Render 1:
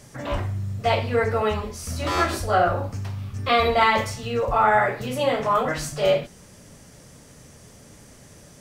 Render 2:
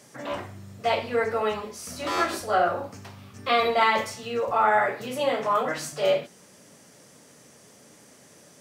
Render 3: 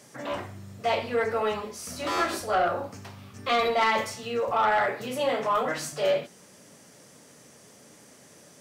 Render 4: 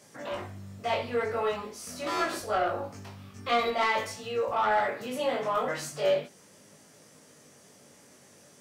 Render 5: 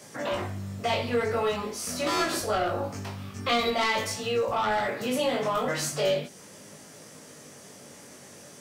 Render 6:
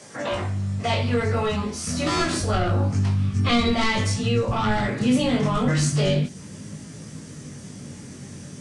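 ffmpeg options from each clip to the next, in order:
-af "highpass=220,volume=0.75"
-af "asoftclip=type=tanh:threshold=0.15"
-af "flanger=delay=19:depth=2.1:speed=0.43"
-filter_complex "[0:a]acrossover=split=290|3000[s0][s1][s2];[s1]acompressor=threshold=0.0158:ratio=3[s3];[s0][s3][s2]amix=inputs=3:normalize=0,volume=2.51"
-af "asubboost=boost=8.5:cutoff=200,volume=1.5" -ar 22050 -c:a aac -b:a 48k

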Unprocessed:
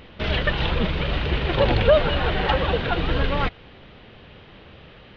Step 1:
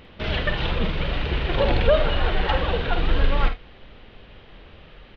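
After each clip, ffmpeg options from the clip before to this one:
-filter_complex "[0:a]asplit=2[s0][s1];[s1]aecho=0:1:51|78:0.376|0.133[s2];[s0][s2]amix=inputs=2:normalize=0,asubboost=boost=4.5:cutoff=51,volume=0.75"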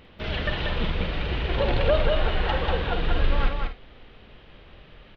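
-af "aecho=1:1:190:0.631,volume=0.631"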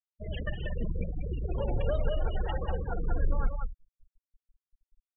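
-filter_complex "[0:a]afftfilt=real='re*gte(hypot(re,im),0.0891)':imag='im*gte(hypot(re,im),0.0891)':win_size=1024:overlap=0.75,acrossover=split=230[s0][s1];[s1]acompressor=threshold=0.0178:ratio=1.5[s2];[s0][s2]amix=inputs=2:normalize=0,volume=0.562"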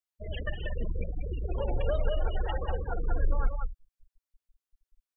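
-af "equalizer=f=160:w=1:g=-8,volume=1.19"

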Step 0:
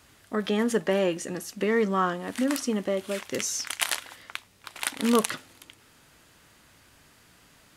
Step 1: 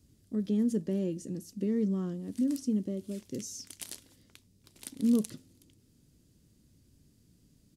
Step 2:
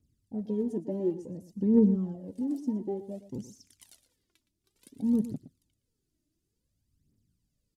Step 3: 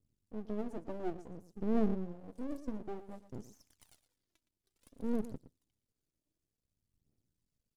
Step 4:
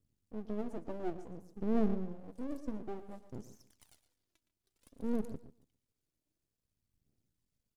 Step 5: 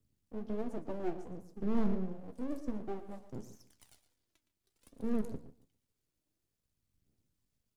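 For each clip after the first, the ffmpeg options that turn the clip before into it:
-af "firequalizer=gain_entry='entry(220,0);entry(750,-25);entry(1300,-29);entry(4900,-12)':delay=0.05:min_phase=1"
-af "afwtdn=0.0126,aphaser=in_gain=1:out_gain=1:delay=3.4:decay=0.69:speed=0.56:type=triangular,aecho=1:1:116:0.2"
-af "aeval=exprs='max(val(0),0)':c=same,volume=0.596"
-filter_complex "[0:a]asplit=2[s0][s1];[s1]adelay=143,lowpass=f=3700:p=1,volume=0.158,asplit=2[s2][s3];[s3]adelay=143,lowpass=f=3700:p=1,volume=0.24[s4];[s0][s2][s4]amix=inputs=3:normalize=0"
-filter_complex "[0:a]acrossover=split=110[s0][s1];[s1]volume=37.6,asoftclip=hard,volume=0.0266[s2];[s0][s2]amix=inputs=2:normalize=0,flanger=delay=8.6:depth=8.5:regen=-65:speed=1.4:shape=triangular,volume=2"

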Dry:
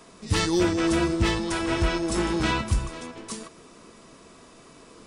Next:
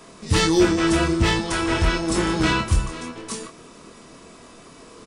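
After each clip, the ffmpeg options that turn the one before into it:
-filter_complex "[0:a]asplit=2[s0][s1];[s1]adelay=25,volume=0.596[s2];[s0][s2]amix=inputs=2:normalize=0,volume=1.5"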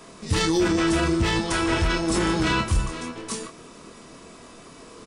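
-af "alimiter=limit=0.211:level=0:latency=1:release=17"

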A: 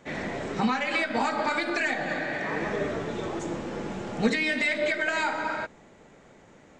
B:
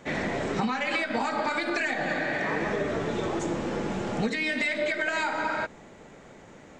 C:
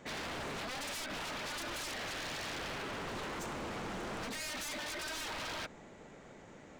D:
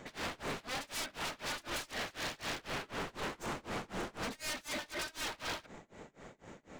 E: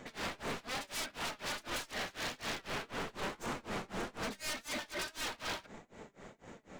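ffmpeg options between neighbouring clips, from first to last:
-af "acompressor=threshold=0.0355:ratio=6,volume=1.68"
-af "aeval=exprs='0.0282*(abs(mod(val(0)/0.0282+3,4)-2)-1)':c=same,volume=0.562"
-af "aeval=exprs='0.0168*(cos(1*acos(clip(val(0)/0.0168,-1,1)))-cos(1*PI/2))+0.000944*(cos(6*acos(clip(val(0)/0.0168,-1,1)))-cos(6*PI/2))':c=same,tremolo=f=4:d=0.97,volume=1.58"
-af "flanger=delay=3.9:depth=1.4:regen=79:speed=1.7:shape=triangular,volume=1.68"

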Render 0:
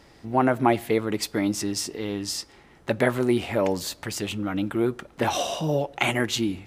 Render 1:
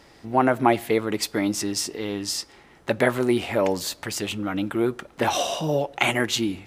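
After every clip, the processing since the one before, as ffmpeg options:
-af "lowshelf=f=240:g=-5,volume=1.33"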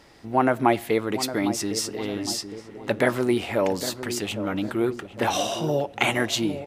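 -filter_complex "[0:a]asplit=2[s0][s1];[s1]adelay=808,lowpass=f=970:p=1,volume=0.316,asplit=2[s2][s3];[s3]adelay=808,lowpass=f=970:p=1,volume=0.54,asplit=2[s4][s5];[s5]adelay=808,lowpass=f=970:p=1,volume=0.54,asplit=2[s6][s7];[s7]adelay=808,lowpass=f=970:p=1,volume=0.54,asplit=2[s8][s9];[s9]adelay=808,lowpass=f=970:p=1,volume=0.54,asplit=2[s10][s11];[s11]adelay=808,lowpass=f=970:p=1,volume=0.54[s12];[s0][s2][s4][s6][s8][s10][s12]amix=inputs=7:normalize=0,volume=0.891"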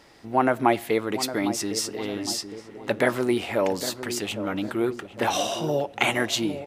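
-af "lowshelf=f=170:g=-5"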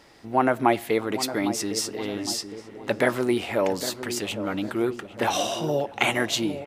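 -filter_complex "[0:a]asplit=2[s0][s1];[s1]adelay=641.4,volume=0.0708,highshelf=f=4000:g=-14.4[s2];[s0][s2]amix=inputs=2:normalize=0"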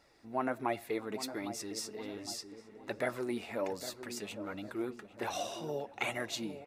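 -af "bandreject=f=3100:w=8.8,flanger=delay=1.4:depth=3.3:regen=49:speed=1.3:shape=sinusoidal,volume=0.376"

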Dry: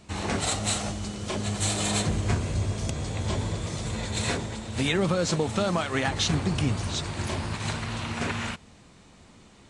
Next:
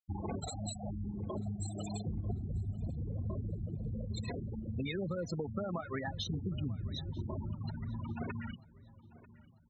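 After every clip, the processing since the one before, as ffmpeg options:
-filter_complex "[0:a]acompressor=threshold=0.0158:ratio=4,afftfilt=real='re*gte(hypot(re,im),0.0316)':imag='im*gte(hypot(re,im),0.0316)':win_size=1024:overlap=0.75,asplit=2[s0][s1];[s1]adelay=942,lowpass=f=2700:p=1,volume=0.112,asplit=2[s2][s3];[s3]adelay=942,lowpass=f=2700:p=1,volume=0.5,asplit=2[s4][s5];[s5]adelay=942,lowpass=f=2700:p=1,volume=0.5,asplit=2[s6][s7];[s7]adelay=942,lowpass=f=2700:p=1,volume=0.5[s8];[s0][s2][s4][s6][s8]amix=inputs=5:normalize=0,volume=1.12"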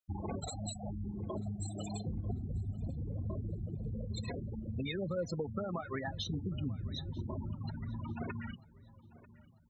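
-af "flanger=delay=1.6:depth=2.4:regen=82:speed=0.21:shape=sinusoidal,volume=1.68"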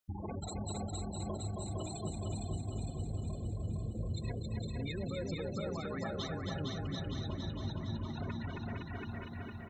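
-filter_complex "[0:a]asplit=2[s0][s1];[s1]aecho=0:1:270|513|731.7|928.5|1106:0.631|0.398|0.251|0.158|0.1[s2];[s0][s2]amix=inputs=2:normalize=0,acompressor=threshold=0.00562:ratio=3,asplit=2[s3][s4];[s4]aecho=0:1:459|918|1377|1836|2295|2754|3213|3672:0.668|0.381|0.217|0.124|0.0706|0.0402|0.0229|0.0131[s5];[s3][s5]amix=inputs=2:normalize=0,volume=1.78"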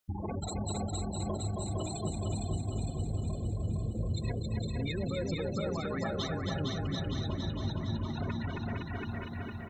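-af "aeval=exprs='0.0596*(cos(1*acos(clip(val(0)/0.0596,-1,1)))-cos(1*PI/2))+0.000422*(cos(8*acos(clip(val(0)/0.0596,-1,1)))-cos(8*PI/2))':c=same,volume=1.68"

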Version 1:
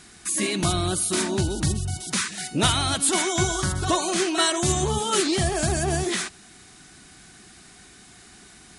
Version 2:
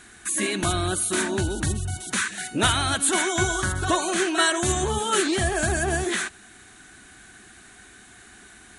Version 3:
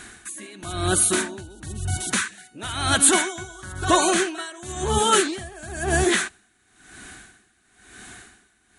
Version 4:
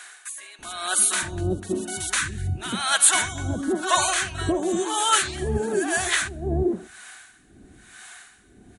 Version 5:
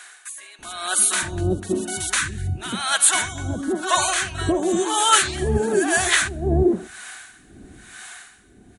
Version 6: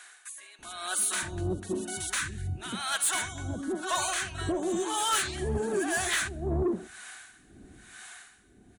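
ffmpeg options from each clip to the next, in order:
-af "equalizer=f=160:t=o:w=0.33:g=-10,equalizer=f=1600:t=o:w=0.33:g=8,equalizer=f=5000:t=o:w=0.33:g=-10"
-af "aeval=exprs='val(0)*pow(10,-23*(0.5-0.5*cos(2*PI*0.99*n/s))/20)':c=same,volume=2.24"
-filter_complex "[0:a]acrossover=split=600[s0][s1];[s0]adelay=590[s2];[s2][s1]amix=inputs=2:normalize=0"
-af "dynaudnorm=f=470:g=5:m=2.24"
-af "asoftclip=type=tanh:threshold=0.2,volume=0.422"

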